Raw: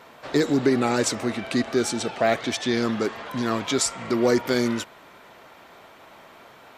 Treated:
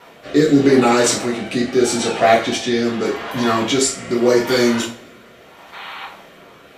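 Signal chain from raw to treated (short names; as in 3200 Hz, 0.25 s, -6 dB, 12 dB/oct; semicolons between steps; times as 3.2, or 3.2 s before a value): spectral gain 5.73–6.05, 760–4500 Hz +11 dB; two-slope reverb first 0.36 s, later 2 s, from -27 dB, DRR -5 dB; rotary speaker horn 0.8 Hz; gain +3.5 dB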